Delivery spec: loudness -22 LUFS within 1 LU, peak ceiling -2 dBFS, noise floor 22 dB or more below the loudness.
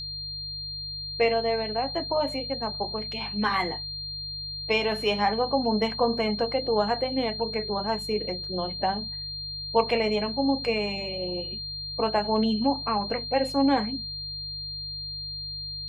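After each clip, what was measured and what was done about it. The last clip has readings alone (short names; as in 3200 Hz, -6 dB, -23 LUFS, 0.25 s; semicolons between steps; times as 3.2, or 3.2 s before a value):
hum 50 Hz; harmonics up to 150 Hz; hum level -42 dBFS; steady tone 4200 Hz; tone level -33 dBFS; loudness -27.5 LUFS; peak -9.5 dBFS; loudness target -22.0 LUFS
-> de-hum 50 Hz, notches 3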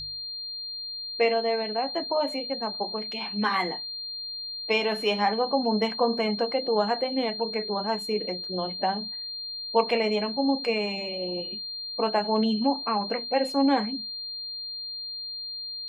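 hum none; steady tone 4200 Hz; tone level -33 dBFS
-> notch 4200 Hz, Q 30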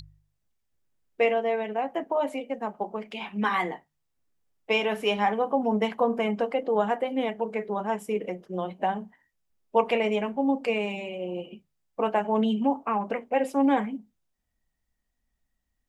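steady tone none; loudness -27.5 LUFS; peak -10.0 dBFS; loudness target -22.0 LUFS
-> gain +5.5 dB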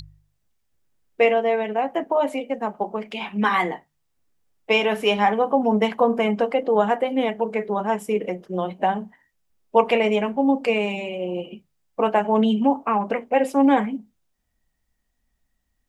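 loudness -22.0 LUFS; peak -4.5 dBFS; noise floor -73 dBFS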